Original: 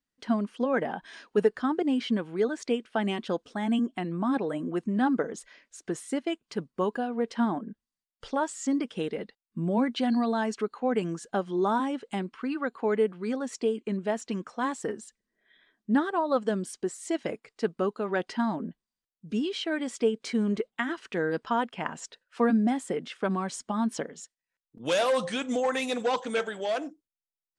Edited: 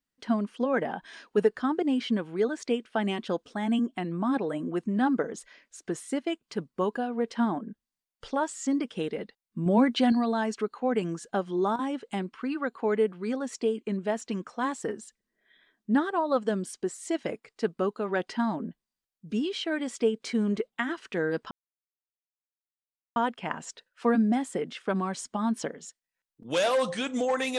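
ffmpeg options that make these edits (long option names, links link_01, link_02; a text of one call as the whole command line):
ffmpeg -i in.wav -filter_complex "[0:a]asplit=6[link_01][link_02][link_03][link_04][link_05][link_06];[link_01]atrim=end=9.662[link_07];[link_02]atrim=start=9.658:end=10.122,asetpts=PTS-STARTPTS,volume=4dB[link_08];[link_03]atrim=start=10.118:end=11.76,asetpts=PTS-STARTPTS,afade=type=out:start_time=1.382:duration=0.26:curve=log:silence=0.223872[link_09];[link_04]atrim=start=11.76:end=11.79,asetpts=PTS-STARTPTS,volume=-13dB[link_10];[link_05]atrim=start=11.79:end=21.51,asetpts=PTS-STARTPTS,afade=type=in:duration=0.26:curve=log:silence=0.223872,afade=type=out:start_time=9.716:duration=0.004:curve=hsin,apad=pad_dur=1.65[link_11];[link_06]atrim=start=21.51,asetpts=PTS-STARTPTS,afade=type=in:duration=0.004:curve=hsin[link_12];[link_07][link_08]acrossfade=duration=0.004:curve1=hsin:curve2=hsin[link_13];[link_09][link_10][link_11][link_12]concat=n=4:v=0:a=1[link_14];[link_13][link_14]acrossfade=duration=0.004:curve1=hsin:curve2=hsin" out.wav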